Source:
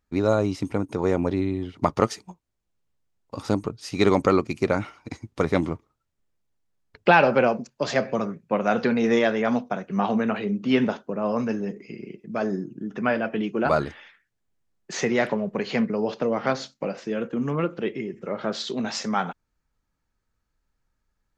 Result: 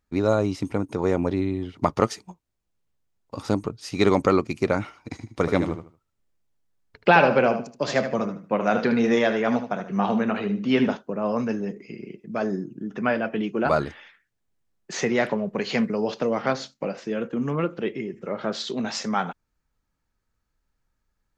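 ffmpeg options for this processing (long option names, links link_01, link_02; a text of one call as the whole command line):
ffmpeg -i in.wav -filter_complex "[0:a]asettb=1/sr,asplit=3[link_01][link_02][link_03];[link_01]atrim=end=5.084[link_04];[link_02]atrim=start=5.08:end=10.95,asetpts=PTS-STARTPTS,afade=type=in:duration=0.004:curve=qsin,afade=type=out:start_time=5.866:duration=0.004:curve=qsin,aecho=1:1:76|152|228:0.335|0.0837|0.0209,atrim=end_sample=258867[link_05];[link_03]atrim=start=10.946[link_06];[link_04][link_05]acrossfade=duration=0.004:curve1=hsin:curve2=qsin[link_07];[link_07][link_06]acrossfade=duration=0.004:curve1=qsin:curve2=hsin,asettb=1/sr,asplit=3[link_08][link_09][link_10];[link_08]atrim=end=15.584[link_11];[link_09]atrim=start=15.58:end=16.42,asetpts=PTS-STARTPTS,afade=type=in:duration=0.004:curve=qsin,afade=type=out:start_time=0.836:duration=0.004:curve=qsin,highshelf=frequency=3700:gain=7.5[link_12];[link_10]atrim=start=16.416[link_13];[link_11][link_12]acrossfade=duration=0.004:curve1=hsin:curve2=qsin[link_14];[link_14][link_13]acrossfade=duration=0.004:curve1=qsin:curve2=hsin" out.wav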